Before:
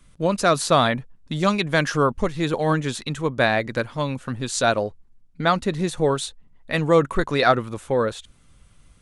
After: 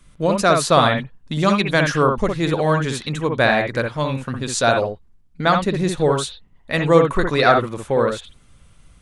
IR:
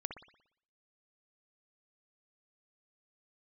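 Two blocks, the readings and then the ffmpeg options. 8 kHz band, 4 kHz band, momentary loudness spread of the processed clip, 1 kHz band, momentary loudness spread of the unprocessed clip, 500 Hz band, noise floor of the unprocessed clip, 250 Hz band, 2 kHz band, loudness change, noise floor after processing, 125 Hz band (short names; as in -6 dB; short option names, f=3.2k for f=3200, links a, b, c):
+2.5 dB, +3.0 dB, 9 LU, +3.5 dB, 9 LU, +3.5 dB, -54 dBFS, +3.0 dB, +3.5 dB, +3.5 dB, -52 dBFS, +3.5 dB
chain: -filter_complex "[0:a]equalizer=f=270:t=o:w=0.33:g=-2[a];[1:a]atrim=start_sample=2205,afade=t=out:st=0.14:d=0.01,atrim=end_sample=6615,asetrate=43218,aresample=44100[b];[a][b]afir=irnorm=-1:irlink=0,volume=5dB"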